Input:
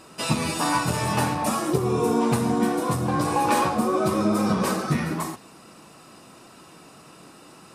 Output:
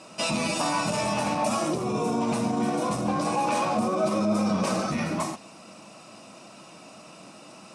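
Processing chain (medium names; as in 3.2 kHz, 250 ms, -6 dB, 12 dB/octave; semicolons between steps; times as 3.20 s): octave divider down 1 oct, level -4 dB; peak limiter -17.5 dBFS, peak gain reduction 8.5 dB; cabinet simulation 190–9800 Hz, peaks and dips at 200 Hz +6 dB, 410 Hz -6 dB, 620 Hz +8 dB, 1.7 kHz -5 dB, 2.5 kHz +5 dB, 5.8 kHz +5 dB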